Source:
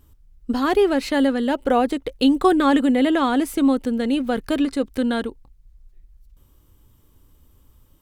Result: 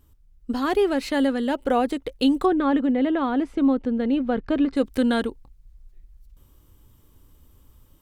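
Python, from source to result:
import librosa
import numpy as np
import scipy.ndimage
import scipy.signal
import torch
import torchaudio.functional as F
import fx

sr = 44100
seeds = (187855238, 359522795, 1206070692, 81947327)

y = fx.spacing_loss(x, sr, db_at_10k=27, at=(2.44, 4.75), fade=0.02)
y = fx.rider(y, sr, range_db=10, speed_s=2.0)
y = F.gain(torch.from_numpy(y), -2.0).numpy()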